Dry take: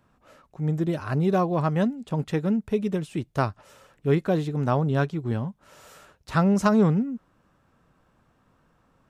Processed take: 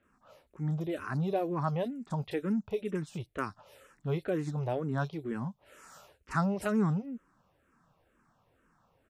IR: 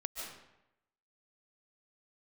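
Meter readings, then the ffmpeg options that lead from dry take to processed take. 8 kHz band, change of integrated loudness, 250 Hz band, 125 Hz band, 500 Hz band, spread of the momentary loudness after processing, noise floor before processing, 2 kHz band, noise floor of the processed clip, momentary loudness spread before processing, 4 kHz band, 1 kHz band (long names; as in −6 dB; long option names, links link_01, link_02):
−8.0 dB, −8.5 dB, −9.0 dB, −8.5 dB, −8.0 dB, 10 LU, −66 dBFS, −6.5 dB, −72 dBFS, 10 LU, −8.5 dB, −8.0 dB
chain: -filter_complex "[0:a]lowshelf=frequency=290:gain=-5,asplit=2[link_01][link_02];[link_02]alimiter=level_in=1.5dB:limit=-24dB:level=0:latency=1,volume=-1.5dB,volume=-1dB[link_03];[link_01][link_03]amix=inputs=2:normalize=0,acrossover=split=4000[link_04][link_05];[link_05]adelay=30[link_06];[link_04][link_06]amix=inputs=2:normalize=0,asplit=2[link_07][link_08];[link_08]afreqshift=-2.1[link_09];[link_07][link_09]amix=inputs=2:normalize=1,volume=-6dB"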